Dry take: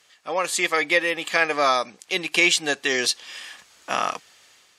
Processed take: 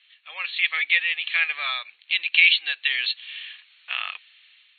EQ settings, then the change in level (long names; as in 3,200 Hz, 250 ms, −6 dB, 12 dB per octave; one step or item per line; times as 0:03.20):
high-pass with resonance 2,600 Hz, resonance Q 2.1
linear-phase brick-wall low-pass 4,400 Hz
high-frequency loss of the air 110 metres
0.0 dB